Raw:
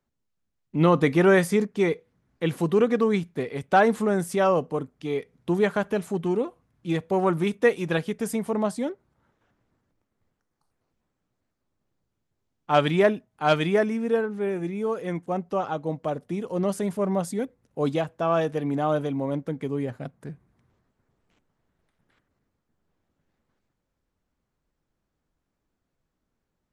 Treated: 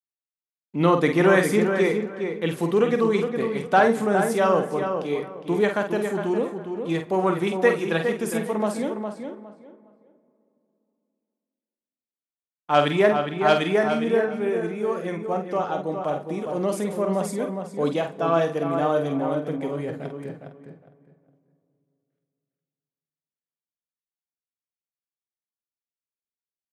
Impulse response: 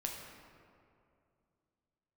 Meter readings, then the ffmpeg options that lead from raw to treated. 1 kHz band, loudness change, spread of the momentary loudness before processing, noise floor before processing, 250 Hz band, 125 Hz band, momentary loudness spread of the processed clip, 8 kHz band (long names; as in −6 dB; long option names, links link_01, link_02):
+2.5 dB, +1.5 dB, 11 LU, −80 dBFS, +0.5 dB, −1.0 dB, 10 LU, +2.0 dB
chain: -filter_complex "[0:a]agate=range=-33dB:threshold=-50dB:ratio=3:detection=peak,highpass=frequency=210:poles=1,asplit=2[link_01][link_02];[link_02]adelay=48,volume=-7dB[link_03];[link_01][link_03]amix=inputs=2:normalize=0,asplit=2[link_04][link_05];[link_05]adelay=410,lowpass=frequency=2900:poles=1,volume=-6.5dB,asplit=2[link_06][link_07];[link_07]adelay=410,lowpass=frequency=2900:poles=1,volume=0.22,asplit=2[link_08][link_09];[link_09]adelay=410,lowpass=frequency=2900:poles=1,volume=0.22[link_10];[link_04][link_06][link_08][link_10]amix=inputs=4:normalize=0,asplit=2[link_11][link_12];[1:a]atrim=start_sample=2205,asetrate=37485,aresample=44100[link_13];[link_12][link_13]afir=irnorm=-1:irlink=0,volume=-14.5dB[link_14];[link_11][link_14]amix=inputs=2:normalize=0"